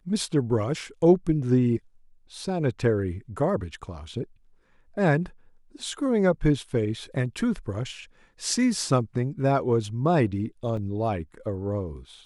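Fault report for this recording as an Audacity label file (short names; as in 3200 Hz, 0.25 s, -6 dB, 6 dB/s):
10.770000	10.770000	gap 2.8 ms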